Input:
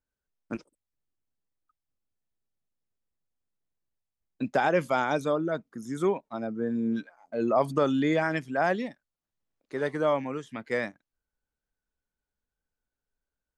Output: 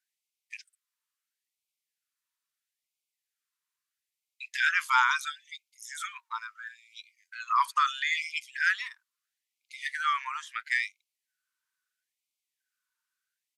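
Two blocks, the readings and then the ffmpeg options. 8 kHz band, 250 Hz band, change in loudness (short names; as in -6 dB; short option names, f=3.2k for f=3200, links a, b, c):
n/a, under -40 dB, -0.5 dB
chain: -af "aresample=32000,aresample=44100,afftfilt=real='re*gte(b*sr/1024,890*pow(2100/890,0.5+0.5*sin(2*PI*0.75*pts/sr)))':imag='im*gte(b*sr/1024,890*pow(2100/890,0.5+0.5*sin(2*PI*0.75*pts/sr)))':win_size=1024:overlap=0.75,volume=8dB"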